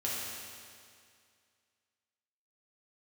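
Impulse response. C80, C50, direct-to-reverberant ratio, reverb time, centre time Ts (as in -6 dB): -0.5 dB, -2.0 dB, -7.0 dB, 2.2 s, 0.137 s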